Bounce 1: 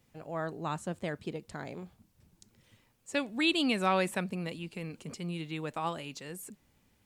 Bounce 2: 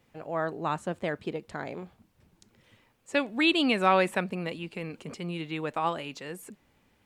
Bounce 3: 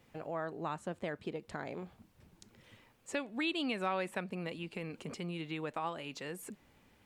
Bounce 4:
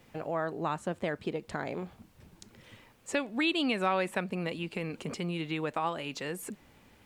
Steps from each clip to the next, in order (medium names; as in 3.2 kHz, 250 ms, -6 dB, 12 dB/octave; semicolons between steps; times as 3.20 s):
tone controls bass -6 dB, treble -9 dB; trim +6 dB
compression 2:1, threshold -43 dBFS, peak gain reduction 14 dB; trim +1 dB
added noise pink -80 dBFS; trim +6 dB